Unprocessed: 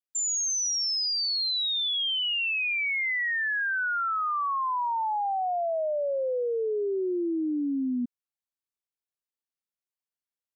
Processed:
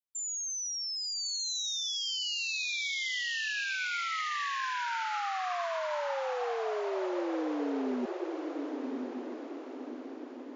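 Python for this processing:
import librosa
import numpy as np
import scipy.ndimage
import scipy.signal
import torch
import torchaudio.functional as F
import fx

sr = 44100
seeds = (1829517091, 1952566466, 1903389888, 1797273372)

p1 = fx.low_shelf(x, sr, hz=240.0, db=4.5)
p2 = p1 + fx.echo_diffused(p1, sr, ms=1092, feedback_pct=55, wet_db=-3.5, dry=0)
y = F.gain(torch.from_numpy(p2), -8.0).numpy()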